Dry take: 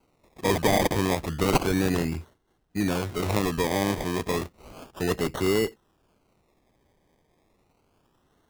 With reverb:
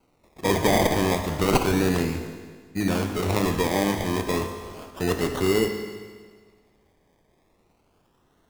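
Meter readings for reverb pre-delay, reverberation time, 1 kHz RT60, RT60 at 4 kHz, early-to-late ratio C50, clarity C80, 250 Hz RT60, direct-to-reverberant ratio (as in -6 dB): 19 ms, 1.6 s, 1.6 s, 1.6 s, 6.5 dB, 8.0 dB, 1.6 s, 5.0 dB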